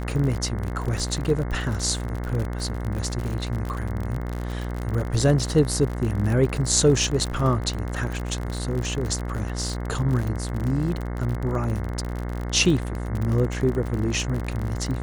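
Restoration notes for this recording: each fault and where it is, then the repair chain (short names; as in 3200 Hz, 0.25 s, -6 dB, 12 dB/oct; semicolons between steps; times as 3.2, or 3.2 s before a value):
buzz 60 Hz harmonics 36 -29 dBFS
crackle 51/s -27 dBFS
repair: de-click; de-hum 60 Hz, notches 36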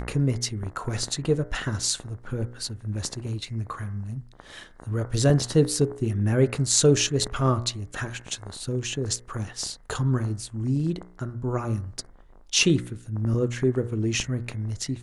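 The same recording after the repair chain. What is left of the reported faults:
none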